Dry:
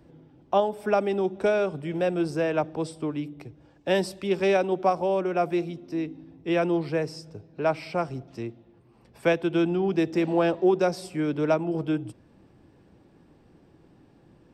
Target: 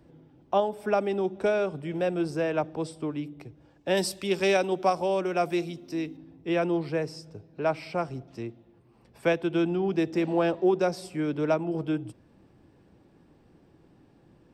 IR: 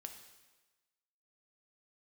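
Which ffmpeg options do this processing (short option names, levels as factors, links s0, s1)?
-filter_complex "[0:a]asettb=1/sr,asplit=3[s0][s1][s2];[s0]atrim=end=3.974[s3];[s1]atrim=start=3.97:end=6.17,asetpts=PTS-STARTPTS,afade=t=in:d=0.004:c=qsin,afade=t=out:st=2.196:d=0.004:c=qsin,highshelf=f=3000:g=11[s4];[s2]atrim=start=6.166[s5];[s3][s4]acrossfade=d=0.004:c1=hsin:c2=qsin[s6];[s6][s5]acrossfade=d=0.004:c1=qsin:c2=hsin,volume=0.794"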